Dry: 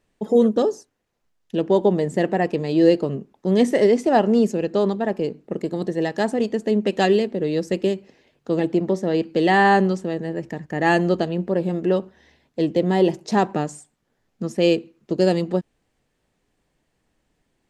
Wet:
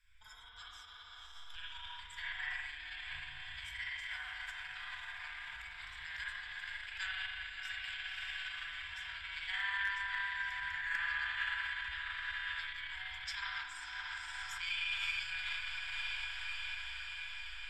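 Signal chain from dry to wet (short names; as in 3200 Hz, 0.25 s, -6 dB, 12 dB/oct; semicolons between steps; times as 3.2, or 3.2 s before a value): ripple EQ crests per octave 1.7, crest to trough 13 dB; compressor, threshold -23 dBFS, peak gain reduction 14 dB; high shelf 4100 Hz -11.5 dB; resonator 150 Hz, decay 0.2 s, harmonics all, mix 70%; diffused feedback echo 0.547 s, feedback 74%, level -7 dB; spring tank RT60 3.6 s, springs 37/57 ms, chirp 50 ms, DRR -9.5 dB; limiter -23 dBFS, peak gain reduction 14.5 dB; inverse Chebyshev band-stop 170–600 Hz, stop band 60 dB; hard clip -36 dBFS, distortion -40 dB; gain +9.5 dB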